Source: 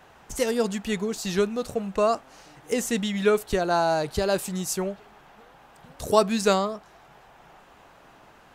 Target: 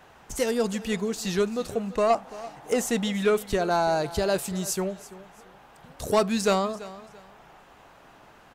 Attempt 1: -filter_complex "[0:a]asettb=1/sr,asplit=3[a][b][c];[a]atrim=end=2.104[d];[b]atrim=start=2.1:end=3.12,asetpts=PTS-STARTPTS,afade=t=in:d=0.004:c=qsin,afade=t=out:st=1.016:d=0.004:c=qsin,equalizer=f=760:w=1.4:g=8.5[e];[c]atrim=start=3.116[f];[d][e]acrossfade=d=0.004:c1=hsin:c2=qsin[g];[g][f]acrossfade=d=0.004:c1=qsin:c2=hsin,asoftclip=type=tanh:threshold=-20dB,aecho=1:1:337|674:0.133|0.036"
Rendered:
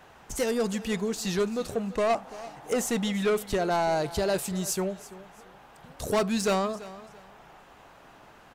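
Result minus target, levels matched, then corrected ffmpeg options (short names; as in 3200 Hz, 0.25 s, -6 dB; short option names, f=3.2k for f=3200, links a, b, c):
soft clip: distortion +7 dB
-filter_complex "[0:a]asettb=1/sr,asplit=3[a][b][c];[a]atrim=end=2.104[d];[b]atrim=start=2.1:end=3.12,asetpts=PTS-STARTPTS,afade=t=in:d=0.004:c=qsin,afade=t=out:st=1.016:d=0.004:c=qsin,equalizer=f=760:w=1.4:g=8.5[e];[c]atrim=start=3.116[f];[d][e]acrossfade=d=0.004:c1=hsin:c2=qsin[g];[g][f]acrossfade=d=0.004:c1=qsin:c2=hsin,asoftclip=type=tanh:threshold=-13.5dB,aecho=1:1:337|674:0.133|0.036"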